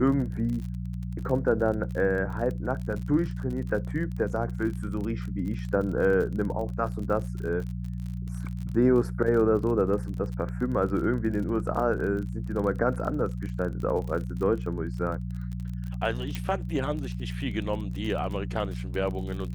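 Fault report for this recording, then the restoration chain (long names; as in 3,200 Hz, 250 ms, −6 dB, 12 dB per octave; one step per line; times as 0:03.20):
surface crackle 40 per second −34 dBFS
mains hum 60 Hz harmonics 3 −33 dBFS
0:16.35: click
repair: click removal
hum removal 60 Hz, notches 3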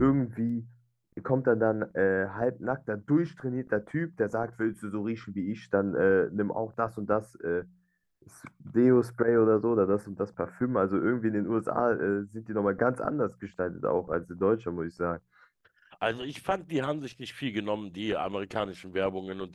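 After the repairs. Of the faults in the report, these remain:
none of them is left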